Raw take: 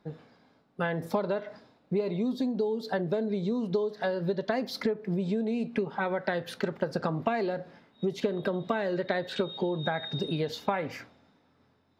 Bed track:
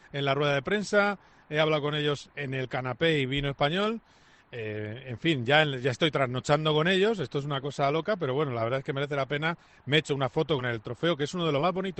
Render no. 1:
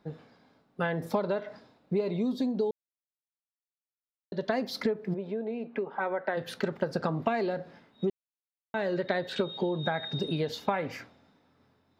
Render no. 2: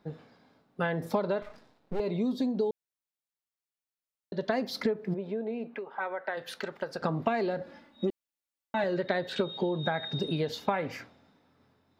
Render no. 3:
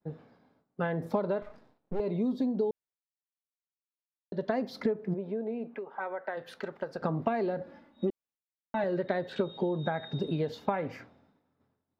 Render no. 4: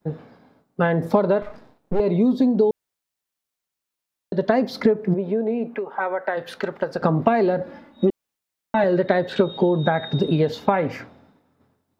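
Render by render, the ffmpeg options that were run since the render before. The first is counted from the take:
ffmpeg -i in.wav -filter_complex "[0:a]asplit=3[link_01][link_02][link_03];[link_01]afade=type=out:start_time=5.13:duration=0.02[link_04];[link_02]highpass=330,lowpass=2000,afade=type=in:start_time=5.13:duration=0.02,afade=type=out:start_time=6.36:duration=0.02[link_05];[link_03]afade=type=in:start_time=6.36:duration=0.02[link_06];[link_04][link_05][link_06]amix=inputs=3:normalize=0,asplit=5[link_07][link_08][link_09][link_10][link_11];[link_07]atrim=end=2.71,asetpts=PTS-STARTPTS,afade=type=out:start_time=2.706:duration=0.004:curve=hsin[link_12];[link_08]atrim=start=2.71:end=4.32,asetpts=PTS-STARTPTS,volume=0[link_13];[link_09]atrim=start=4.32:end=8.1,asetpts=PTS-STARTPTS,afade=type=in:duration=0.004:curve=hsin,afade=type=out:start_time=3.776:duration=0.004:curve=hsin[link_14];[link_10]atrim=start=8.1:end=8.74,asetpts=PTS-STARTPTS,volume=0[link_15];[link_11]atrim=start=8.74,asetpts=PTS-STARTPTS,afade=type=in:duration=0.004:curve=hsin[link_16];[link_12][link_13][link_14][link_15][link_16]concat=n=5:v=0:a=1" out.wav
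ffmpeg -i in.wav -filter_complex "[0:a]asettb=1/sr,asplit=3[link_01][link_02][link_03];[link_01]atrim=end=1.424[link_04];[link_02]atrim=start=1.42:end=2,asetpts=PTS-STARTPTS,afade=type=in:duration=0.004:curve=qsin,afade=type=out:start_time=0.576:duration=0.004:curve=qsin,aeval=exprs='max(val(0),0)':channel_layout=same[link_05];[link_03]atrim=start=1.996[link_06];[link_04][link_05]acrossfade=duration=0.004:curve1=hsin:curve2=qsin[link_07];[link_07][link_06]acrossfade=duration=0.004:curve1=qsin:curve2=hsin,asettb=1/sr,asplit=3[link_08][link_09][link_10];[link_08]atrim=end=5.744[link_11];[link_09]atrim=start=5.74:end=7.02,asetpts=PTS-STARTPTS,afade=type=in:duration=0.004:curve=qsin,afade=type=out:start_time=1.276:duration=0.004:curve=qsin,equalizer=frequency=120:width=0.34:gain=-13.5[link_12];[link_10]atrim=start=7.016[link_13];[link_11][link_12]acrossfade=duration=0.004:curve1=hsin:curve2=qsin[link_14];[link_14][link_13]acrossfade=duration=0.004:curve1=qsin:curve2=hsin,asettb=1/sr,asplit=3[link_15][link_16][link_17];[link_15]atrim=end=7.614[link_18];[link_16]atrim=start=7.61:end=8.84,asetpts=PTS-STARTPTS,afade=type=in:duration=0.004:curve=qsin,afade=type=out:start_time=1.226:duration=0.004:curve=qsin,aecho=1:1:3.5:0.85,atrim=end_sample=54243[link_19];[link_17]atrim=start=8.836[link_20];[link_18][link_19]acrossfade=duration=0.004:curve1=hsin:curve2=qsin[link_21];[link_21][link_20]acrossfade=duration=0.004:curve1=qsin:curve2=hsin" out.wav
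ffmpeg -i in.wav -af "agate=range=-33dB:threshold=-59dB:ratio=3:detection=peak,highshelf=frequency=2100:gain=-11.5" out.wav
ffmpeg -i in.wav -af "volume=11.5dB,alimiter=limit=-3dB:level=0:latency=1" out.wav

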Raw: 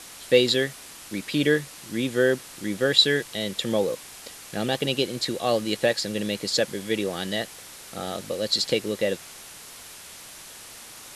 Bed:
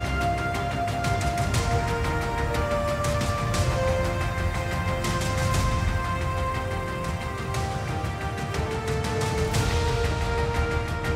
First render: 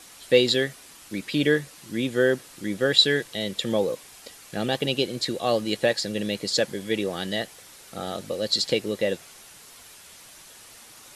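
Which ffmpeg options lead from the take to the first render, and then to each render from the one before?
ffmpeg -i in.wav -af "afftdn=noise_reduction=6:noise_floor=-44" out.wav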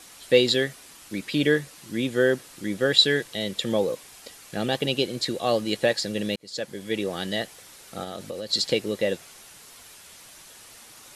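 ffmpeg -i in.wav -filter_complex "[0:a]asplit=3[link_01][link_02][link_03];[link_01]afade=type=out:start_time=8.03:duration=0.02[link_04];[link_02]acompressor=threshold=-29dB:ratio=6:attack=3.2:release=140:knee=1:detection=peak,afade=type=in:start_time=8.03:duration=0.02,afade=type=out:start_time=8.52:duration=0.02[link_05];[link_03]afade=type=in:start_time=8.52:duration=0.02[link_06];[link_04][link_05][link_06]amix=inputs=3:normalize=0,asplit=2[link_07][link_08];[link_07]atrim=end=6.36,asetpts=PTS-STARTPTS,afade=type=out:start_time=6.356:duration=0.004:curve=hsin[link_09];[link_08]atrim=start=6.36,asetpts=PTS-STARTPTS,afade=type=in:duration=0.95:curve=qsin[link_10];[link_09][link_10]concat=n=2:v=0:a=1" out.wav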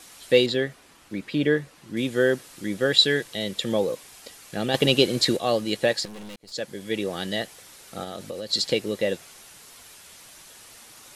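ffmpeg -i in.wav -filter_complex "[0:a]asettb=1/sr,asplit=3[link_01][link_02][link_03];[link_01]atrim=end=0.464[link_04];[link_02]atrim=start=0.46:end=1.97,asetpts=PTS-STARTPTS,afade=type=in:duration=0.004:curve=qsin,afade=type=out:start_time=1.506:duration=0.004:curve=qsin,highshelf=frequency=3500:gain=-12[link_05];[link_03]atrim=start=1.966[link_06];[link_04][link_05]acrossfade=duration=0.004:curve1=hsin:curve2=qsin[link_07];[link_07][link_06]acrossfade=duration=0.004:curve1=qsin:curve2=hsin,asettb=1/sr,asplit=3[link_08][link_09][link_10];[link_08]atrim=end=4.744[link_11];[link_09]atrim=start=4.74:end=5.37,asetpts=PTS-STARTPTS,afade=type=in:duration=0.004:curve=qsin,afade=type=out:start_time=0.626:duration=0.004:curve=qsin,acontrast=59[link_12];[link_10]atrim=start=5.366[link_13];[link_11][link_12]acrossfade=duration=0.004:curve1=hsin:curve2=qsin[link_14];[link_14][link_13]acrossfade=duration=0.004:curve1=qsin:curve2=hsin,asettb=1/sr,asplit=3[link_15][link_16][link_17];[link_15]atrim=end=6.054[link_18];[link_16]atrim=start=6.05:end=6.52,asetpts=PTS-STARTPTS,afade=type=in:duration=0.004:curve=qsin,afade=type=out:start_time=0.466:duration=0.004:curve=qsin,aeval=exprs='(tanh(79.4*val(0)+0.7)-tanh(0.7))/79.4':channel_layout=same[link_19];[link_17]atrim=start=6.516[link_20];[link_18][link_19]acrossfade=duration=0.004:curve1=hsin:curve2=qsin[link_21];[link_21][link_20]acrossfade=duration=0.004:curve1=qsin:curve2=hsin" out.wav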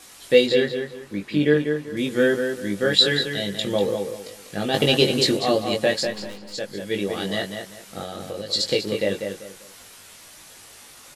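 ffmpeg -i in.wav -filter_complex "[0:a]asplit=2[link_01][link_02];[link_02]adelay=20,volume=-4dB[link_03];[link_01][link_03]amix=inputs=2:normalize=0,asplit=2[link_04][link_05];[link_05]adelay=194,lowpass=frequency=3500:poles=1,volume=-6dB,asplit=2[link_06][link_07];[link_07]adelay=194,lowpass=frequency=3500:poles=1,volume=0.29,asplit=2[link_08][link_09];[link_09]adelay=194,lowpass=frequency=3500:poles=1,volume=0.29,asplit=2[link_10][link_11];[link_11]adelay=194,lowpass=frequency=3500:poles=1,volume=0.29[link_12];[link_04][link_06][link_08][link_10][link_12]amix=inputs=5:normalize=0" out.wav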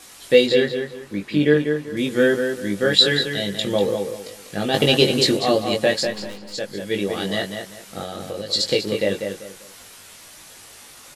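ffmpeg -i in.wav -af "volume=2dB,alimiter=limit=-1dB:level=0:latency=1" out.wav

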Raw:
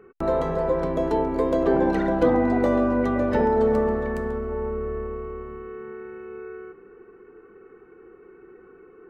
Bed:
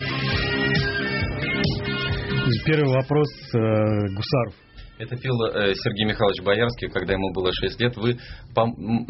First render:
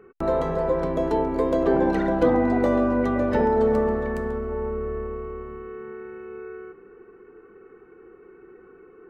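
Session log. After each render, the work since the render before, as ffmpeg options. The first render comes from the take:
ffmpeg -i in.wav -af anull out.wav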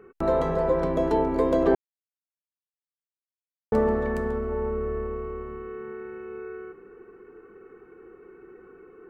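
ffmpeg -i in.wav -filter_complex "[0:a]asplit=3[link_01][link_02][link_03];[link_01]atrim=end=1.75,asetpts=PTS-STARTPTS,afade=type=out:start_time=1.746:duration=0.004:curve=hsin[link_04];[link_02]atrim=start=1.75:end=3.72,asetpts=PTS-STARTPTS,volume=0[link_05];[link_03]atrim=start=3.72,asetpts=PTS-STARTPTS,afade=type=in:duration=0.004:curve=hsin[link_06];[link_04][link_05][link_06]concat=n=3:v=0:a=1" out.wav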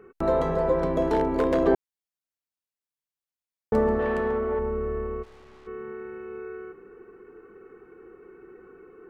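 ffmpeg -i in.wav -filter_complex "[0:a]asplit=3[link_01][link_02][link_03];[link_01]afade=type=out:start_time=1.01:duration=0.02[link_04];[link_02]aeval=exprs='0.168*(abs(mod(val(0)/0.168+3,4)-2)-1)':channel_layout=same,afade=type=in:start_time=1.01:duration=0.02,afade=type=out:start_time=1.6:duration=0.02[link_05];[link_03]afade=type=in:start_time=1.6:duration=0.02[link_06];[link_04][link_05][link_06]amix=inputs=3:normalize=0,asettb=1/sr,asplit=3[link_07][link_08][link_09];[link_07]atrim=end=3.994[link_10];[link_08]atrim=start=3.99:end=4.59,asetpts=PTS-STARTPTS,afade=type=in:duration=0.004:curve=qsin,afade=type=out:start_time=0.596:duration=0.004:curve=qsin,asplit=2[link_11][link_12];[link_12]highpass=frequency=720:poles=1,volume=15dB,asoftclip=type=tanh:threshold=-16dB[link_13];[link_11][link_13]amix=inputs=2:normalize=0,lowpass=frequency=1400:poles=1,volume=-6dB[link_14];[link_09]atrim=start=4.586[link_15];[link_10][link_14]acrossfade=duration=0.004:curve1=hsin:curve2=qsin[link_16];[link_16][link_15]acrossfade=duration=0.004:curve1=qsin:curve2=hsin,asplit=3[link_17][link_18][link_19];[link_17]afade=type=out:start_time=5.22:duration=0.02[link_20];[link_18]aeval=exprs='(tanh(316*val(0)+0.55)-tanh(0.55))/316':channel_layout=same,afade=type=in:start_time=5.22:duration=0.02,afade=type=out:start_time=5.66:duration=0.02[link_21];[link_19]afade=type=in:start_time=5.66:duration=0.02[link_22];[link_20][link_21][link_22]amix=inputs=3:normalize=0" out.wav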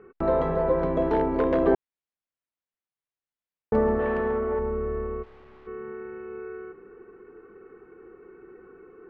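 ffmpeg -i in.wav -af "lowpass=2800" out.wav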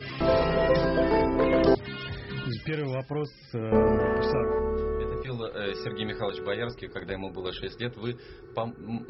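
ffmpeg -i in.wav -i bed.wav -filter_complex "[1:a]volume=-11dB[link_01];[0:a][link_01]amix=inputs=2:normalize=0" out.wav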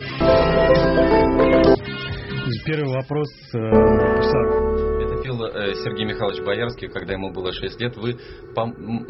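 ffmpeg -i in.wav -af "volume=8dB,alimiter=limit=-2dB:level=0:latency=1" out.wav

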